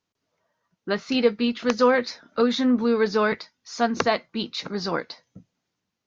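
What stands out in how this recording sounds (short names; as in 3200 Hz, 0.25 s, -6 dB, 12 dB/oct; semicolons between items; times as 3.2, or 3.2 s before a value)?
noise floor -82 dBFS; spectral tilt -3.0 dB/oct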